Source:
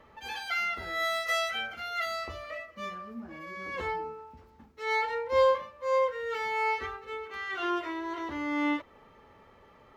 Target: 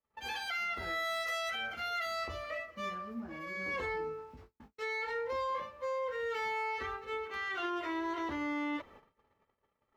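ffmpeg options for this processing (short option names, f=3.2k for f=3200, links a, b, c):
-filter_complex "[0:a]agate=range=-39dB:threshold=-53dB:ratio=16:detection=peak,asettb=1/sr,asplit=3[a][b][c];[a]atrim=end=3.464[d];[b]atrim=start=3.46:end=5.6,asetpts=PTS-STARTPTS,afade=t=in:d=0.004:c=qsin,afade=t=out:st=2.136:d=0.004:c=qsin,asplit=2[e][f];[f]adelay=20,volume=-5dB[g];[e][g]amix=inputs=2:normalize=0,atrim=end_sample=94374[h];[c]atrim=start=5.596[i];[d][h]acrossfade=d=0.004:c1=hsin:c2=qsin[j];[j][i]acrossfade=d=0.004:c1=qsin:c2=hsin,alimiter=level_in=5dB:limit=-24dB:level=0:latency=1:release=59,volume=-5dB"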